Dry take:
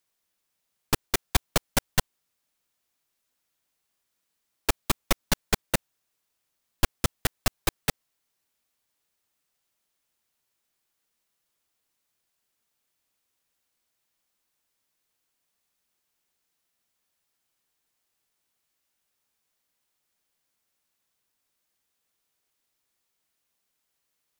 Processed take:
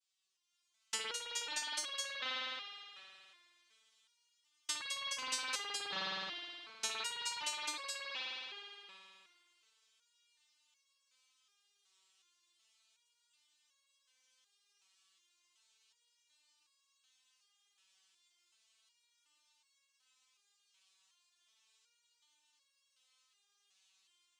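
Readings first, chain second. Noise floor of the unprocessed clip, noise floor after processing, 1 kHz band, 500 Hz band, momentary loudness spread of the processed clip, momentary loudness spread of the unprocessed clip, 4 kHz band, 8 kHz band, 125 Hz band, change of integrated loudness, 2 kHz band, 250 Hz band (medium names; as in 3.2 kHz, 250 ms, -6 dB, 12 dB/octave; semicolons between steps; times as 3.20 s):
-79 dBFS, -80 dBFS, -10.0 dB, -17.0 dB, 13 LU, 4 LU, -4.0 dB, -8.0 dB, under -30 dB, -10.5 dB, -7.0 dB, -25.0 dB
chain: differentiator; level rider gain up to 11 dB; noise-vocoded speech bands 4; bass shelf 200 Hz +3.5 dB; spring tank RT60 2.3 s, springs 52 ms, chirp 25 ms, DRR -3.5 dB; compression 6:1, threshold -33 dBFS, peak gain reduction 13.5 dB; resonator arpeggio 2.7 Hz 190–550 Hz; trim +12 dB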